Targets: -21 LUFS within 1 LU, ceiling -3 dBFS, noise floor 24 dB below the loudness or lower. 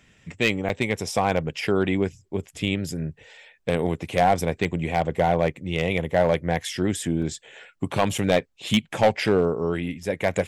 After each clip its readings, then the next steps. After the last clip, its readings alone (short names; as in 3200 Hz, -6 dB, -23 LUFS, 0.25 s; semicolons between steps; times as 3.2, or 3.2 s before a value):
clipped 0.4%; flat tops at -11.0 dBFS; dropouts 4; longest dropout 3.9 ms; loudness -24.5 LUFS; peak -11.0 dBFS; loudness target -21.0 LUFS
-> clip repair -11 dBFS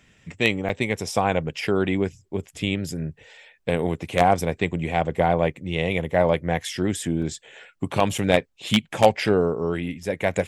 clipped 0.0%; dropouts 4; longest dropout 3.9 ms
-> interpolate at 0.69/7.22/8.18/10.03, 3.9 ms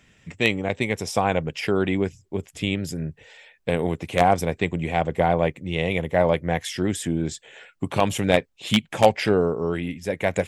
dropouts 0; loudness -24.0 LUFS; peak -2.0 dBFS; loudness target -21.0 LUFS
-> gain +3 dB; limiter -3 dBFS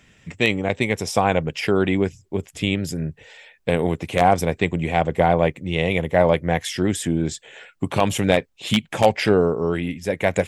loudness -21.5 LUFS; peak -3.0 dBFS; noise floor -59 dBFS